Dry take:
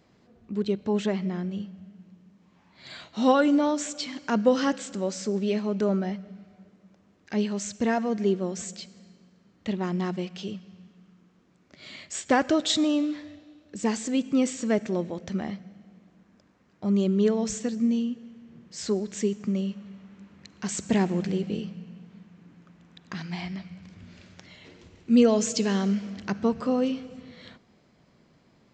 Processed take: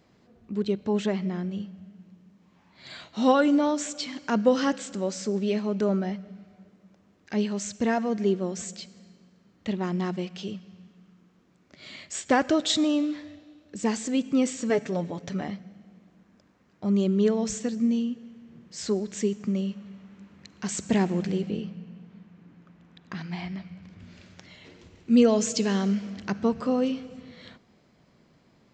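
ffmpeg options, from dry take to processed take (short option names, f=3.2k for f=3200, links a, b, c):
-filter_complex "[0:a]asettb=1/sr,asplit=3[a][b][c];[a]atrim=end=14.694[d];[b]atrim=start=14.69:end=15.48,asetpts=PTS-STARTPTS,afade=t=in:d=0.004:c=qsin,afade=t=out:st=0.786:d=0.004:c=qsin,aecho=1:1:7:0.64,atrim=end_sample=34839[e];[c]atrim=start=15.476[f];[d][e]acrossfade=d=0.004:c1=hsin:c2=qsin[g];[g][f]acrossfade=d=0.004:c1=qsin:c2=hsin,asettb=1/sr,asplit=3[h][i][j];[h]atrim=end=21.504[k];[i]atrim=start=21.5:end=24,asetpts=PTS-STARTPTS,afade=t=in:d=0.004:c=qsin,afade=t=out:st=2.496:d=0.004:c=qsin,lowpass=f=3.4k:p=1[l];[j]atrim=start=23.996[m];[k][l]acrossfade=d=0.004:c1=hsin:c2=qsin[n];[n][m]acrossfade=d=0.004:c1=qsin:c2=hsin"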